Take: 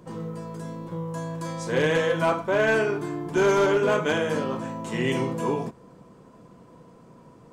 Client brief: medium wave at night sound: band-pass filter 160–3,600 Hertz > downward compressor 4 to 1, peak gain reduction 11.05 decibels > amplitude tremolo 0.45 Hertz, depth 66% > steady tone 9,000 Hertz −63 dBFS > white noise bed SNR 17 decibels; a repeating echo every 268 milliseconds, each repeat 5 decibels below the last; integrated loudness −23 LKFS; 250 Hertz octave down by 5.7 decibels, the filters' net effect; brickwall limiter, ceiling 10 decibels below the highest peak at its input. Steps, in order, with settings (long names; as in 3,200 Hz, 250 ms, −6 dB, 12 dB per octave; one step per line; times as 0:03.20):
parametric band 250 Hz −7.5 dB
brickwall limiter −23.5 dBFS
band-pass filter 160–3,600 Hz
repeating echo 268 ms, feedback 56%, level −5 dB
downward compressor 4 to 1, threshold −38 dBFS
amplitude tremolo 0.45 Hz, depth 66%
steady tone 9,000 Hz −63 dBFS
white noise bed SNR 17 dB
level +20.5 dB